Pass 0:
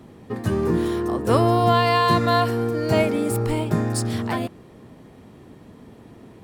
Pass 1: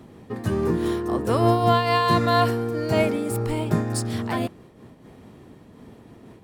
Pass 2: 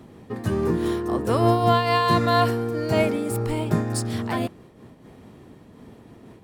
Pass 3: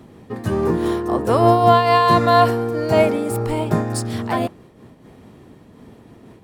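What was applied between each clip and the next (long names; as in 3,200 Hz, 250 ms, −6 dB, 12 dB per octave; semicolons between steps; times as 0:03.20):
amplitude modulation by smooth noise, depth 60%; level +1.5 dB
no processing that can be heard
dynamic equaliser 750 Hz, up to +6 dB, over −34 dBFS, Q 0.9; level +2 dB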